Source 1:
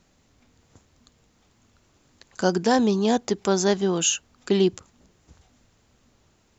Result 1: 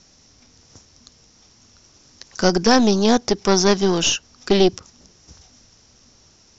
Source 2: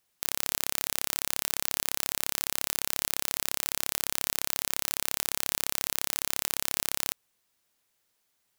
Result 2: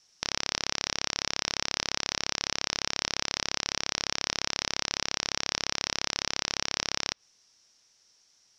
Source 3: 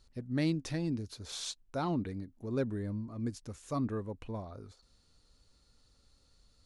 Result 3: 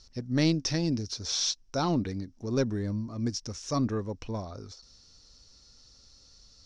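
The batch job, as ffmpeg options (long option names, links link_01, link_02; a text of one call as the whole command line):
ffmpeg -i in.wav -filter_complex "[0:a]aeval=exprs='0.891*(cos(1*acos(clip(val(0)/0.891,-1,1)))-cos(1*PI/2))+0.0794*(cos(5*acos(clip(val(0)/0.891,-1,1)))-cos(5*PI/2))+0.0891*(cos(8*acos(clip(val(0)/0.891,-1,1)))-cos(8*PI/2))':channel_layout=same,acrossover=split=4300[link_01][link_02];[link_02]acompressor=threshold=-44dB:ratio=4:attack=1:release=60[link_03];[link_01][link_03]amix=inputs=2:normalize=0,lowpass=frequency=5600:width_type=q:width=8.5,volume=2dB" out.wav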